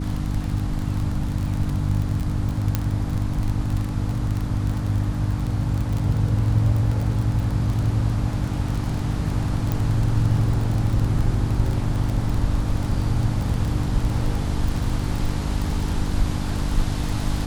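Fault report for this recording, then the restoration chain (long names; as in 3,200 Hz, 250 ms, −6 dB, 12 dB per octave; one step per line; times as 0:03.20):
surface crackle 28 per second −24 dBFS
mains hum 50 Hz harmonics 6 −27 dBFS
0:02.75: click −7 dBFS
0:09.72: click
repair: click removal
hum removal 50 Hz, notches 6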